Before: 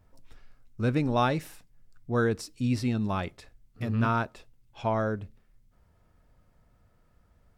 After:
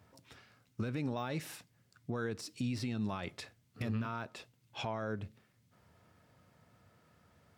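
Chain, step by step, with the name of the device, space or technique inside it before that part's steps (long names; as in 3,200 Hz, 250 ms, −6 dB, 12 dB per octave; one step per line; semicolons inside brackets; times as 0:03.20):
broadcast voice chain (high-pass filter 93 Hz 24 dB per octave; de-essing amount 100%; downward compressor 4 to 1, threshold −33 dBFS, peak gain reduction 11 dB; parametric band 3,500 Hz +4.5 dB 2.5 octaves; brickwall limiter −29 dBFS, peak gain reduction 8.5 dB)
level +2 dB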